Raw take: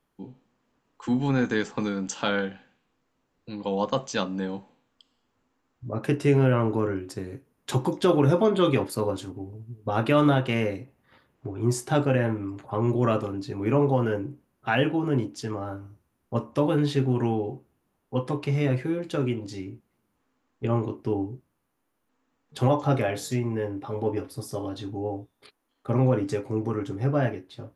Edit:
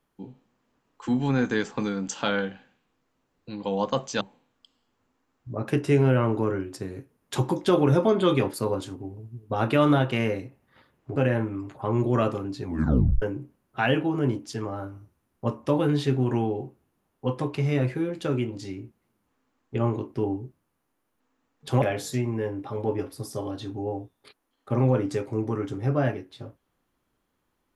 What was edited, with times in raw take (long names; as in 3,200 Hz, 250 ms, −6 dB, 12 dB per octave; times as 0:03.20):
0:04.21–0:04.57: remove
0:11.52–0:12.05: remove
0:13.53: tape stop 0.58 s
0:22.71–0:23.00: remove